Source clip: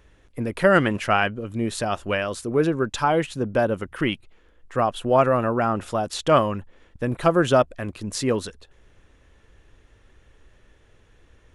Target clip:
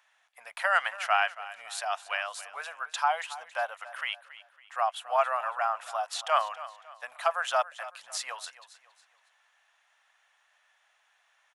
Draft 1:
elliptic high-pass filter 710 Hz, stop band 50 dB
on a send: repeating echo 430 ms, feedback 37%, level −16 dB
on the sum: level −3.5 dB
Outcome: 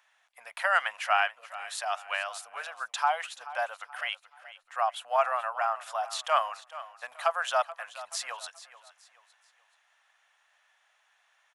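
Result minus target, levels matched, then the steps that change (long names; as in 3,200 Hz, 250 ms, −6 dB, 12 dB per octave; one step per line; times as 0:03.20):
echo 153 ms late
change: repeating echo 277 ms, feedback 37%, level −16 dB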